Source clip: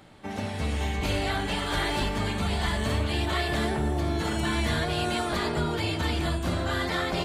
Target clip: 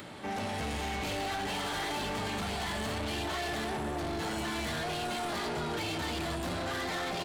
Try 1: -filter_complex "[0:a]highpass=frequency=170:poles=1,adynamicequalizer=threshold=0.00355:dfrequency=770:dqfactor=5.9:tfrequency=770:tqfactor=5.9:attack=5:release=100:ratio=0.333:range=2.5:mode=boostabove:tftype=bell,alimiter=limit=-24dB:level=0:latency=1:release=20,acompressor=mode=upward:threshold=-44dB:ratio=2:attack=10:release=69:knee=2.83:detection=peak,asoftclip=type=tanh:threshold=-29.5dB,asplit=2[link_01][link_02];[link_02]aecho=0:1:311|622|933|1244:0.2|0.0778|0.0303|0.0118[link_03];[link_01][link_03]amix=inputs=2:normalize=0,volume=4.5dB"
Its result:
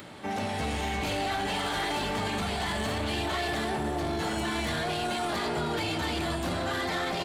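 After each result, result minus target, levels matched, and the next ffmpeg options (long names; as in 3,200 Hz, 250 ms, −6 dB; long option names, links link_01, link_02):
soft clipping: distortion −6 dB; echo-to-direct +6 dB
-filter_complex "[0:a]highpass=frequency=170:poles=1,adynamicequalizer=threshold=0.00355:dfrequency=770:dqfactor=5.9:tfrequency=770:tqfactor=5.9:attack=5:release=100:ratio=0.333:range=2.5:mode=boostabove:tftype=bell,alimiter=limit=-24dB:level=0:latency=1:release=20,acompressor=mode=upward:threshold=-44dB:ratio=2:attack=10:release=69:knee=2.83:detection=peak,asoftclip=type=tanh:threshold=-36.5dB,asplit=2[link_01][link_02];[link_02]aecho=0:1:311|622|933|1244:0.2|0.0778|0.0303|0.0118[link_03];[link_01][link_03]amix=inputs=2:normalize=0,volume=4.5dB"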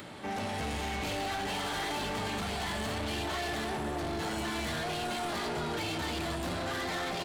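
echo-to-direct +6 dB
-filter_complex "[0:a]highpass=frequency=170:poles=1,adynamicequalizer=threshold=0.00355:dfrequency=770:dqfactor=5.9:tfrequency=770:tqfactor=5.9:attack=5:release=100:ratio=0.333:range=2.5:mode=boostabove:tftype=bell,alimiter=limit=-24dB:level=0:latency=1:release=20,acompressor=mode=upward:threshold=-44dB:ratio=2:attack=10:release=69:knee=2.83:detection=peak,asoftclip=type=tanh:threshold=-36.5dB,asplit=2[link_01][link_02];[link_02]aecho=0:1:311|622|933:0.1|0.039|0.0152[link_03];[link_01][link_03]amix=inputs=2:normalize=0,volume=4.5dB"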